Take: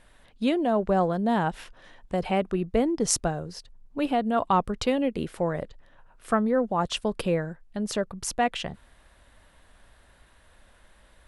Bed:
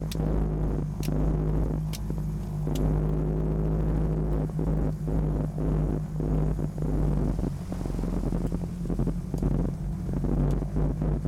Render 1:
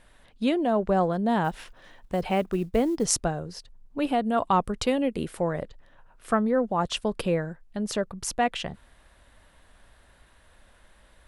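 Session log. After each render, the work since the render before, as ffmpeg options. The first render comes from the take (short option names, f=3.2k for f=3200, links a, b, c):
-filter_complex "[0:a]asettb=1/sr,asplit=3[a][b][c];[a]atrim=end=1.444[d];[b]atrim=start=1.44:end=3.05,asetpts=PTS-STARTPTS,afade=t=in:d=0.004:c=qsin,afade=t=out:st=1.606:d=0.004:c=qsin,acrusher=bits=8:mode=log:mix=0:aa=0.000001[e];[c]atrim=start=3.046[f];[d][e]acrossfade=d=0.004:c1=hsin:c2=qsin[g];[g][f]acrossfade=d=0.004:c1=qsin:c2=hsin,asettb=1/sr,asplit=3[h][i][j];[h]atrim=end=4.064[k];[i]atrim=start=4.06:end=5.41,asetpts=PTS-STARTPTS,afade=t=in:d=0.004:c=qsin,afade=t=out:st=1.346:d=0.004:c=qsin,equalizer=f=9.5k:t=o:w=0.76:g=6[l];[j]atrim=start=5.406[m];[k][l]acrossfade=d=0.004:c1=hsin:c2=qsin[n];[n][m]acrossfade=d=0.004:c1=qsin:c2=hsin"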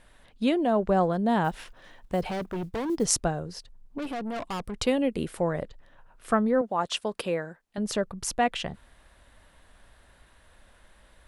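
-filter_complex "[0:a]asettb=1/sr,asplit=3[a][b][c];[a]atrim=end=2.264[d];[b]atrim=start=2.26:end=2.9,asetpts=PTS-STARTPTS,afade=t=in:d=0.004:c=qsin,afade=t=out:st=0.636:d=0.004:c=qsin,asoftclip=type=hard:threshold=-28.5dB[e];[c]atrim=start=2.896[f];[d][e]acrossfade=d=0.004:c1=hsin:c2=qsin[g];[g][f]acrossfade=d=0.004:c1=qsin:c2=hsin,asettb=1/sr,asplit=3[h][i][j];[h]atrim=end=3.984[k];[i]atrim=start=3.98:end=4.8,asetpts=PTS-STARTPTS,afade=t=in:d=0.004:c=qsin,afade=t=out:st=0.816:d=0.004:c=qsin,aeval=exprs='(tanh(31.6*val(0)+0.35)-tanh(0.35))/31.6':c=same[l];[j]atrim=start=4.796[m];[k][l]acrossfade=d=0.004:c1=hsin:c2=qsin[n];[n][m]acrossfade=d=0.004:c1=qsin:c2=hsin,asettb=1/sr,asplit=3[o][p][q];[o]atrim=end=6.614[r];[p]atrim=start=6.61:end=7.78,asetpts=PTS-STARTPTS,afade=t=in:d=0.004:c=qsin,afade=t=out:st=1.166:d=0.004:c=qsin,highpass=f=420:p=1[s];[q]atrim=start=7.776[t];[r][s]acrossfade=d=0.004:c1=hsin:c2=qsin[u];[u][t]acrossfade=d=0.004:c1=qsin:c2=hsin"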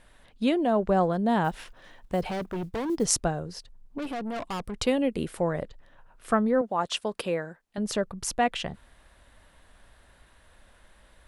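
-af anull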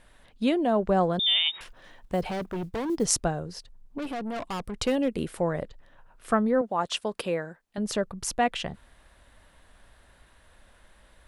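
-filter_complex "[0:a]asettb=1/sr,asplit=3[a][b][c];[a]atrim=end=1.194[d];[b]atrim=start=1.19:end=1.61,asetpts=PTS-STARTPTS,afade=t=in:d=0.004:c=qsin,afade=t=out:st=0.416:d=0.004:c=qsin,lowpass=f=3.2k:t=q:w=0.5098,lowpass=f=3.2k:t=q:w=0.6013,lowpass=f=3.2k:t=q:w=0.9,lowpass=f=3.2k:t=q:w=2.563,afreqshift=-3800[e];[c]atrim=start=1.606[f];[d][e]acrossfade=d=0.004:c1=hsin:c2=qsin[g];[g][f]acrossfade=d=0.004:c1=qsin:c2=hsin,asettb=1/sr,asplit=3[h][i][j];[h]atrim=end=4.834[k];[i]atrim=start=4.83:end=5.23,asetpts=PTS-STARTPTS,afade=t=in:d=0.004:c=qsin,afade=t=out:st=0.396:d=0.004:c=qsin,asoftclip=type=hard:threshold=-18.5dB[l];[j]atrim=start=5.226[m];[k][l]acrossfade=d=0.004:c1=hsin:c2=qsin[n];[n][m]acrossfade=d=0.004:c1=qsin:c2=hsin"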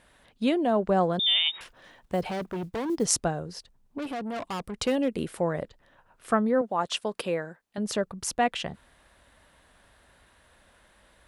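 -af "highpass=f=88:p=1"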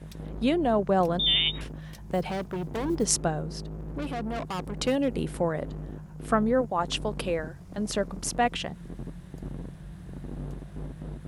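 -filter_complex "[1:a]volume=-11.5dB[a];[0:a][a]amix=inputs=2:normalize=0"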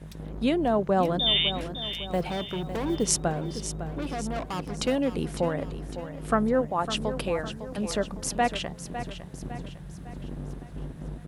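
-af "aecho=1:1:555|1110|1665|2220|2775:0.282|0.132|0.0623|0.0293|0.0138"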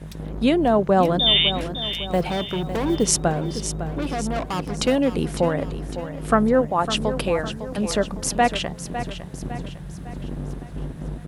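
-af "volume=6dB,alimiter=limit=-3dB:level=0:latency=1"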